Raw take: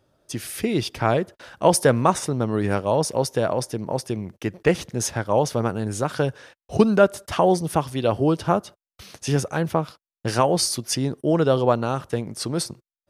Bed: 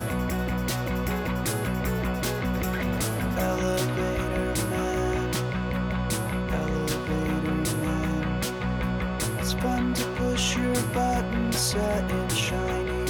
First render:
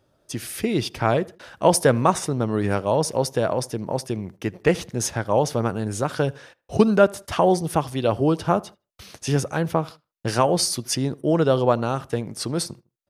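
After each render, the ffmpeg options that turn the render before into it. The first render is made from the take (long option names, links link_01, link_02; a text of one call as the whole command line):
ffmpeg -i in.wav -filter_complex "[0:a]asplit=2[link_01][link_02];[link_02]adelay=78,lowpass=frequency=1900:poles=1,volume=-22.5dB,asplit=2[link_03][link_04];[link_04]adelay=78,lowpass=frequency=1900:poles=1,volume=0.34[link_05];[link_01][link_03][link_05]amix=inputs=3:normalize=0" out.wav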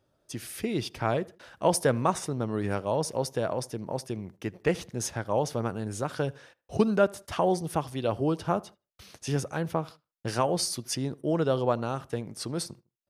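ffmpeg -i in.wav -af "volume=-7dB" out.wav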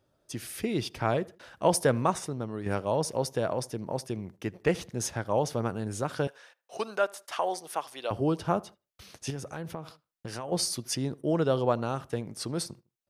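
ffmpeg -i in.wav -filter_complex "[0:a]asettb=1/sr,asplit=3[link_01][link_02][link_03];[link_01]atrim=end=6.274[link_04];[link_02]atrim=start=6.27:end=8.11,asetpts=PTS-STARTPTS,afade=type=in:duration=0.004:curve=qsin,afade=type=out:start_time=1.836:duration=0.004:curve=qsin,highpass=670[link_05];[link_03]atrim=start=8.106[link_06];[link_04][link_05]acrossfade=duration=0.004:curve1=hsin:curve2=qsin[link_07];[link_07][link_06]acrossfade=duration=0.004:curve1=qsin:curve2=hsin,asettb=1/sr,asplit=3[link_08][link_09][link_10];[link_08]atrim=end=9.304[link_11];[link_09]atrim=start=9.3:end=10.52,asetpts=PTS-STARTPTS,afade=type=in:duration=0.004:curve=qsin,afade=type=out:start_time=1.216:duration=0.004:curve=qsin,acompressor=threshold=-34dB:ratio=4:attack=3.2:release=140:knee=1:detection=peak[link_12];[link_10]atrim=start=10.516[link_13];[link_11][link_12]acrossfade=duration=0.004:curve1=hsin:curve2=qsin[link_14];[link_14][link_13]acrossfade=duration=0.004:curve1=qsin:curve2=hsin,asplit=2[link_15][link_16];[link_15]atrim=end=2.66,asetpts=PTS-STARTPTS,afade=type=out:start_time=1.98:duration=0.68:silence=0.421697[link_17];[link_16]atrim=start=2.66,asetpts=PTS-STARTPTS,afade=type=in:duration=0.004:curve=hsin:silence=0.421697[link_18];[link_17][link_18]concat=n=2:v=0:a=1" out.wav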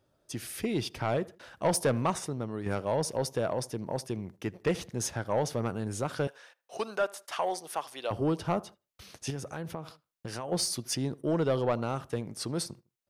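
ffmpeg -i in.wav -af "asoftclip=type=tanh:threshold=-19dB" out.wav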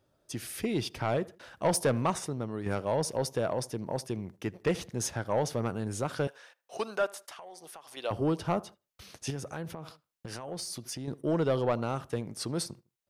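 ffmpeg -i in.wav -filter_complex "[0:a]asettb=1/sr,asplit=3[link_01][link_02][link_03];[link_01]atrim=end=7.294[link_04];[link_02]atrim=start=7.29:end=7.97,asetpts=PTS-STARTPTS,afade=type=in:duration=0.004:curve=qsin,afade=type=out:start_time=0.676:duration=0.004:curve=qsin,acompressor=threshold=-44dB:ratio=8:attack=3.2:release=140:knee=1:detection=peak[link_05];[link_03]atrim=start=7.966[link_06];[link_04][link_05]acrossfade=duration=0.004:curve1=hsin:curve2=qsin[link_07];[link_07][link_06]acrossfade=duration=0.004:curve1=qsin:curve2=hsin,asettb=1/sr,asplit=3[link_08][link_09][link_10];[link_08]atrim=end=9.644[link_11];[link_09]atrim=start=9.64:end=11.08,asetpts=PTS-STARTPTS,afade=type=in:duration=0.004:curve=qsin,afade=type=out:start_time=1.436:duration=0.004:curve=qsin,acompressor=threshold=-35dB:ratio=6:attack=3.2:release=140:knee=1:detection=peak[link_12];[link_10]atrim=start=11.076[link_13];[link_11][link_12]acrossfade=duration=0.004:curve1=hsin:curve2=qsin[link_14];[link_14][link_13]acrossfade=duration=0.004:curve1=qsin:curve2=hsin" out.wav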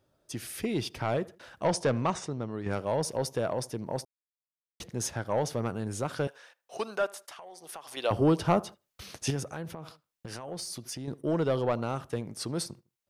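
ffmpeg -i in.wav -filter_complex "[0:a]asettb=1/sr,asplit=3[link_01][link_02][link_03];[link_01]atrim=end=1.654[link_04];[link_02]atrim=start=1.65:end=2.73,asetpts=PTS-STARTPTS,afade=type=in:duration=0.004:curve=qsin,afade=type=out:start_time=1.076:duration=0.004:curve=qsin,lowpass=frequency=7700:width=0.5412,lowpass=frequency=7700:width=1.3066[link_05];[link_03]atrim=start=2.726[link_06];[link_04][link_05]acrossfade=duration=0.004:curve1=hsin:curve2=qsin[link_07];[link_07][link_06]acrossfade=duration=0.004:curve1=qsin:curve2=hsin,asplit=5[link_08][link_09][link_10][link_11][link_12];[link_08]atrim=end=4.05,asetpts=PTS-STARTPTS,afade=type=out:start_time=4.046:duration=0.004:curve=hsin[link_13];[link_09]atrim=start=4.05:end=4.8,asetpts=PTS-STARTPTS,volume=0[link_14];[link_10]atrim=start=4.8:end=7.692,asetpts=PTS-STARTPTS,afade=type=in:duration=0.004:curve=hsin[link_15];[link_11]atrim=start=7.688:end=9.432,asetpts=PTS-STARTPTS,volume=5dB[link_16];[link_12]atrim=start=9.428[link_17];[link_13][link_14][link_15]concat=n=3:v=0:a=1[link_18];[link_18][link_16]acrossfade=duration=0.004:curve1=hsin:curve2=hsin[link_19];[link_19][link_17]acrossfade=duration=0.004:curve1=hsin:curve2=hsin" out.wav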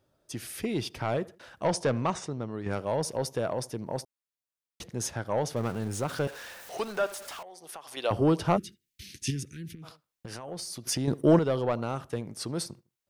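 ffmpeg -i in.wav -filter_complex "[0:a]asettb=1/sr,asplit=3[link_01][link_02][link_03];[link_01]atrim=end=5.564[link_04];[link_02]atrim=start=5.56:end=7.43,asetpts=PTS-STARTPTS,afade=type=in:duration=0.004:curve=qsin,afade=type=out:start_time=1.866:duration=0.004:curve=qsin,aeval=exprs='val(0)+0.5*0.01*sgn(val(0))':channel_layout=same[link_05];[link_03]atrim=start=7.426[link_06];[link_04][link_05]acrossfade=duration=0.004:curve1=hsin:curve2=qsin[link_07];[link_07][link_06]acrossfade=duration=0.004:curve1=qsin:curve2=hsin,asplit=3[link_08][link_09][link_10];[link_08]afade=type=out:start_time=8.56:duration=0.02[link_11];[link_09]asuperstop=centerf=810:order=8:qfactor=0.54,afade=type=in:start_time=8.56:duration=0.02,afade=type=out:start_time=9.82:duration=0.02[link_12];[link_10]afade=type=in:start_time=9.82:duration=0.02[link_13];[link_11][link_12][link_13]amix=inputs=3:normalize=0,asplit=3[link_14][link_15][link_16];[link_14]atrim=end=10.872[link_17];[link_15]atrim=start=10.868:end=11.392,asetpts=PTS-STARTPTS,volume=9dB[link_18];[link_16]atrim=start=11.388[link_19];[link_17][link_18]acrossfade=duration=0.004:curve1=hsin:curve2=hsin[link_20];[link_20][link_19]acrossfade=duration=0.004:curve1=hsin:curve2=hsin" out.wav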